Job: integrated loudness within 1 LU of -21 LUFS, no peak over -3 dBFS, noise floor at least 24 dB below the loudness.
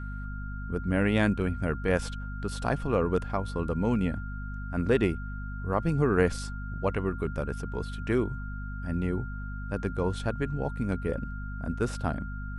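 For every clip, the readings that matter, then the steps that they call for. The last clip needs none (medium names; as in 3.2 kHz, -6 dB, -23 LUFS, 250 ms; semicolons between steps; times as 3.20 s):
hum 50 Hz; highest harmonic 250 Hz; hum level -34 dBFS; steady tone 1.4 kHz; tone level -43 dBFS; loudness -30.5 LUFS; peak level -9.5 dBFS; loudness target -21.0 LUFS
-> hum notches 50/100/150/200/250 Hz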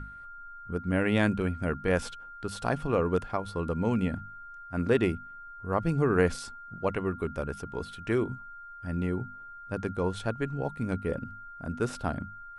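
hum not found; steady tone 1.4 kHz; tone level -43 dBFS
-> band-stop 1.4 kHz, Q 30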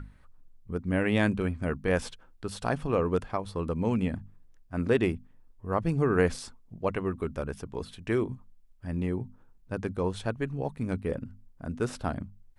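steady tone not found; loudness -30.5 LUFS; peak level -10.5 dBFS; loudness target -21.0 LUFS
-> trim +9.5 dB; peak limiter -3 dBFS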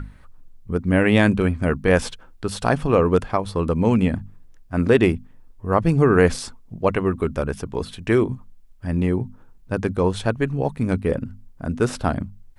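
loudness -21.5 LUFS; peak level -3.0 dBFS; noise floor -48 dBFS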